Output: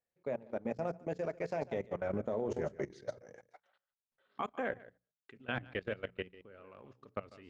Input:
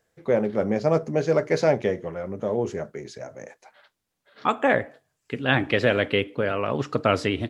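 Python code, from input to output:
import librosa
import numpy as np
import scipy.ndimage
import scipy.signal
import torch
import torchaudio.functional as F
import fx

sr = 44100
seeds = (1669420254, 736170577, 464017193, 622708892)

y = fx.doppler_pass(x, sr, speed_mps=23, closest_m=7.2, pass_at_s=2.53)
y = y + 10.0 ** (-11.0 / 20.0) * np.pad(y, (int(145 * sr / 1000.0), 0))[:len(y)]
y = fx.transient(y, sr, attack_db=2, sustain_db=-10)
y = fx.level_steps(y, sr, step_db=20)
y = fx.high_shelf(y, sr, hz=5800.0, db=-7.5)
y = fx.hum_notches(y, sr, base_hz=60, count=3)
y = y * 10.0 ** (5.5 / 20.0)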